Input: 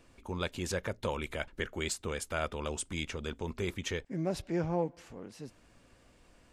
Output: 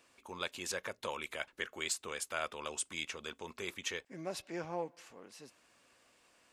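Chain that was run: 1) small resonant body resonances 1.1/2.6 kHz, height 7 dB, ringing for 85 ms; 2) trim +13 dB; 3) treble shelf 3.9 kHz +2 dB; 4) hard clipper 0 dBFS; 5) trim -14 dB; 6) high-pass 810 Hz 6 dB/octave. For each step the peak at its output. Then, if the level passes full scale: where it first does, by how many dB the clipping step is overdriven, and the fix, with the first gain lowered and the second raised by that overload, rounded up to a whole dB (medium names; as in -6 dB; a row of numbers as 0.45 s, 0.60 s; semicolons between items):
-17.5 dBFS, -4.5 dBFS, -4.0 dBFS, -4.0 dBFS, -18.0 dBFS, -19.5 dBFS; nothing clips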